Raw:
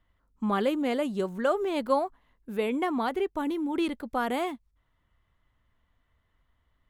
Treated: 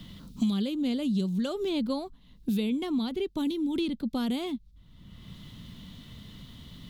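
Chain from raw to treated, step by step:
drawn EQ curve 110 Hz 0 dB, 190 Hz +6 dB, 310 Hz −7 dB, 690 Hz −18 dB, 1,800 Hz −19 dB, 3,800 Hz +3 dB, 7,700 Hz −7 dB
multiband upward and downward compressor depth 100%
level +4.5 dB

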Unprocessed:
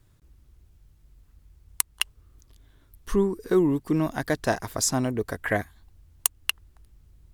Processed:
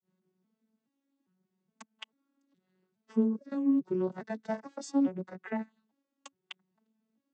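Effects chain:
vocoder with an arpeggio as carrier minor triad, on F#3, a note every 421 ms
granular cloud 216 ms, grains 12 per second, spray 14 ms, pitch spread up and down by 0 semitones
level −3 dB

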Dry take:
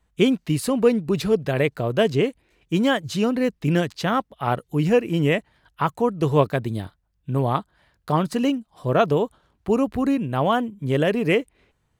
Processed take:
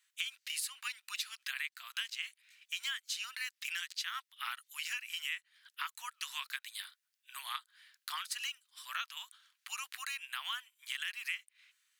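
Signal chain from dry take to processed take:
Bessel high-pass filter 2,500 Hz, order 8
downward compressor 5 to 1, threshold −43 dBFS, peak gain reduction 17.5 dB
level +6.5 dB

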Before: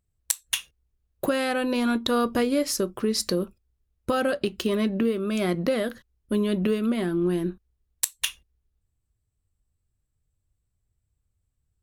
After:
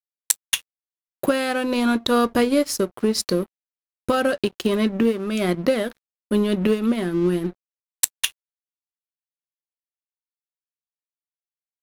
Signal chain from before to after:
dead-zone distortion −41 dBFS
expander for the loud parts 1.5 to 1, over −34 dBFS
level +6.5 dB

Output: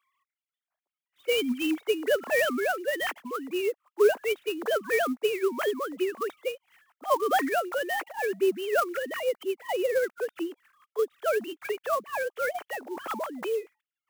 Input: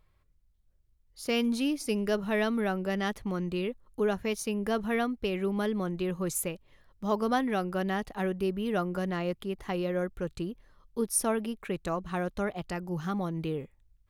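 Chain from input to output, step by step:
three sine waves on the formant tracks
high-pass filter 500 Hz 12 dB per octave
converter with an unsteady clock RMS 0.022 ms
level +7 dB

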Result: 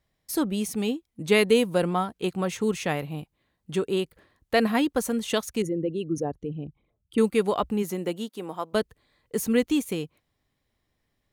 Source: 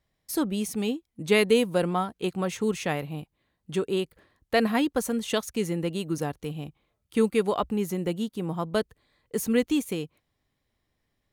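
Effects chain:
0:05.62–0:07.18: spectral envelope exaggerated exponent 2
0:07.82–0:08.73: high-pass filter 170 Hz → 500 Hz 12 dB per octave
level +1 dB

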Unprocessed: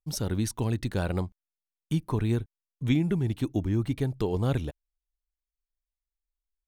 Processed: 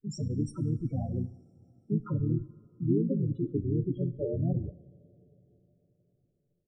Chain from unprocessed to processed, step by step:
pitch-shifted copies added −4 semitones −16 dB, +5 semitones 0 dB
spectral peaks only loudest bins 8
coupled-rooms reverb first 0.59 s, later 4.4 s, from −17 dB, DRR 13.5 dB
level −4.5 dB

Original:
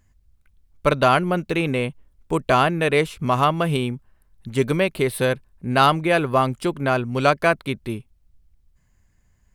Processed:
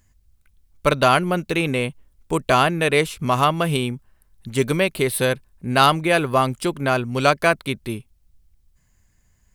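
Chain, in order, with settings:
high-shelf EQ 3,500 Hz +7.5 dB

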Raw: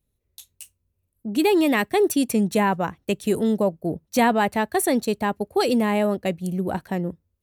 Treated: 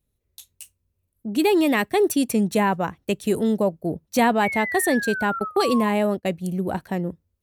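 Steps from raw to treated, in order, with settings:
0:04.43–0:05.91: sound drawn into the spectrogram fall 1,000–2,300 Hz −29 dBFS
0:05.39–0:06.25: noise gate −26 dBFS, range −18 dB

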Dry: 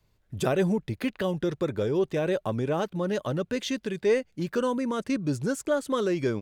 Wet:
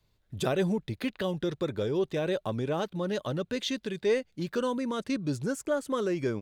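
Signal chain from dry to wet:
parametric band 3,800 Hz +6 dB 0.54 octaves, from 0:05.44 −3 dB
level −3 dB

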